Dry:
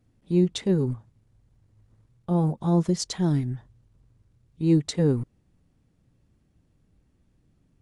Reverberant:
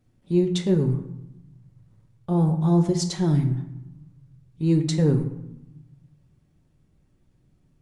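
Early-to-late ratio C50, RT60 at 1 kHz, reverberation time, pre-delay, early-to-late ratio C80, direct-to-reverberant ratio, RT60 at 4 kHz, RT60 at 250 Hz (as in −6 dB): 10.0 dB, 0.95 s, 0.90 s, 5 ms, 12.5 dB, 4.5 dB, 0.50 s, 1.3 s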